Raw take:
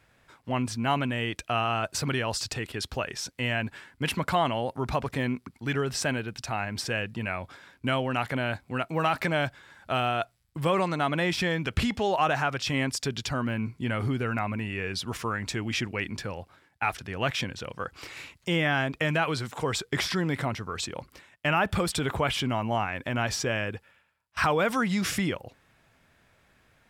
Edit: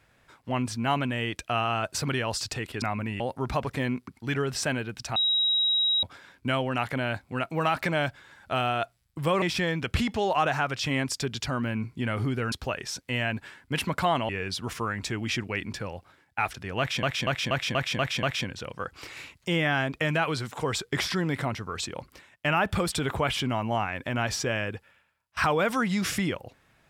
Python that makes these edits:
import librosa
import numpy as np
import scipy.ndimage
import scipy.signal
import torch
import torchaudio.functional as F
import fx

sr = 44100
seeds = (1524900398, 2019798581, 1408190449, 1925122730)

y = fx.edit(x, sr, fx.swap(start_s=2.82, length_s=1.77, other_s=14.35, other_length_s=0.38),
    fx.bleep(start_s=6.55, length_s=0.87, hz=3830.0, db=-21.0),
    fx.cut(start_s=10.81, length_s=0.44),
    fx.stutter(start_s=17.23, slice_s=0.24, count=7), tone=tone)